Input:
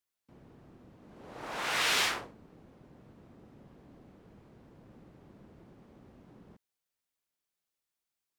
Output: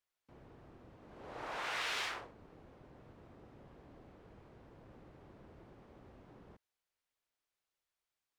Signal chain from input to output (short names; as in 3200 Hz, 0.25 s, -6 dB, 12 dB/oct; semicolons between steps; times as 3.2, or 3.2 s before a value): compressor 2:1, threshold -43 dBFS, peak gain reduction 10 dB; LPF 3600 Hz 6 dB/oct; bell 200 Hz -8 dB 1.4 oct; gain +2 dB